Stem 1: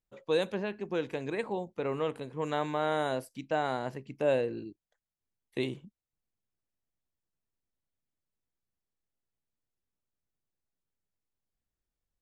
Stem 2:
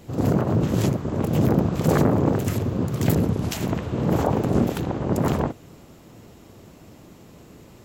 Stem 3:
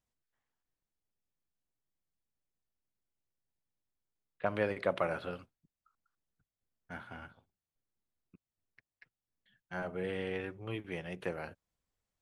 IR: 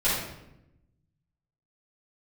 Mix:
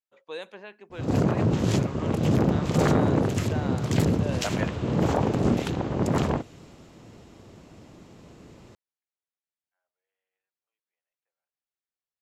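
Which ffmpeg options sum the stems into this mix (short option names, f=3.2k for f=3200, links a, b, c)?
-filter_complex "[0:a]highpass=f=1.1k:p=1,highshelf=f=5k:g=-10,volume=-1.5dB,asplit=2[a][b];[1:a]lowpass=7.2k,adynamicequalizer=threshold=0.00891:dfrequency=1800:dqfactor=0.7:tfrequency=1800:tqfactor=0.7:attack=5:release=100:ratio=0.375:range=2:mode=boostabove:tftype=highshelf,adelay=900,volume=-2dB[c];[2:a]highpass=f=610:w=0.5412,highpass=f=610:w=1.3066,dynaudnorm=f=250:g=13:m=6dB,volume=-3.5dB[d];[b]apad=whole_len=538466[e];[d][e]sidechaingate=range=-48dB:threshold=-53dB:ratio=16:detection=peak[f];[a][c][f]amix=inputs=3:normalize=0,volume=13.5dB,asoftclip=hard,volume=-13.5dB"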